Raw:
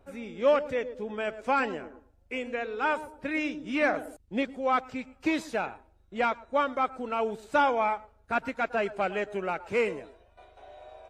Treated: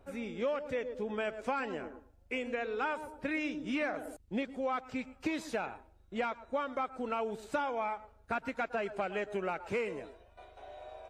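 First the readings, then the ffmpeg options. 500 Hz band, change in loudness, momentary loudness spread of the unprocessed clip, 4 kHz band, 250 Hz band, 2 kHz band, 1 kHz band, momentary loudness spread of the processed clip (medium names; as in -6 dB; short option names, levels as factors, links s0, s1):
-6.5 dB, -7.0 dB, 11 LU, -6.0 dB, -4.5 dB, -7.0 dB, -8.0 dB, 10 LU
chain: -af "acompressor=threshold=0.0282:ratio=6"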